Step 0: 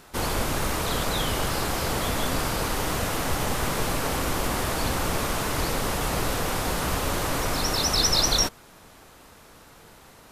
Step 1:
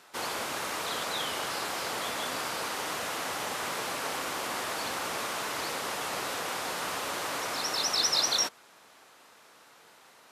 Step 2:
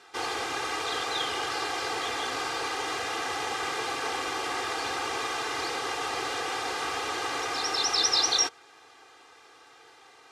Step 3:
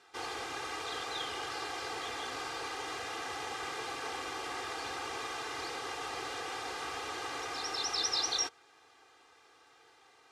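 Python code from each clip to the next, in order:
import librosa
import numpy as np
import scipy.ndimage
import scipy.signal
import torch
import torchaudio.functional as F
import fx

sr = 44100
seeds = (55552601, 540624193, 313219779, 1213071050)

y1 = fx.weighting(x, sr, curve='A')
y1 = y1 * 10.0 ** (-4.5 / 20.0)
y2 = scipy.signal.sosfilt(scipy.signal.butter(2, 6700.0, 'lowpass', fs=sr, output='sos'), y1)
y2 = y2 + 0.96 * np.pad(y2, (int(2.5 * sr / 1000.0), 0))[:len(y2)]
y3 = fx.low_shelf(y2, sr, hz=81.0, db=6.0)
y3 = y3 * 10.0 ** (-8.0 / 20.0)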